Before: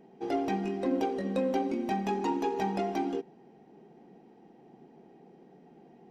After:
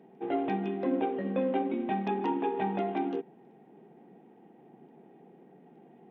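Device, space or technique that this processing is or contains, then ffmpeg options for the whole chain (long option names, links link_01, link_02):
Bluetooth headset: -af "highpass=frequency=110:width=0.5412,highpass=frequency=110:width=1.3066,aresample=8000,aresample=44100" -ar 48000 -c:a sbc -b:a 64k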